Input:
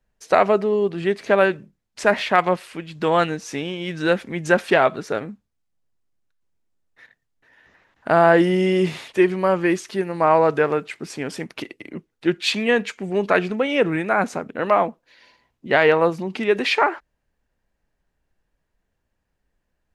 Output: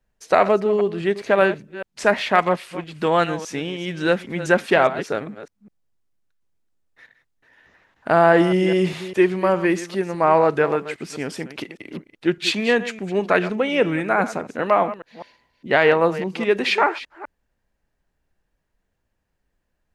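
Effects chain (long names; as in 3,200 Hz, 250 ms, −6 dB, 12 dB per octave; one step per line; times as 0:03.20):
delay that plays each chunk backwards 203 ms, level −13.5 dB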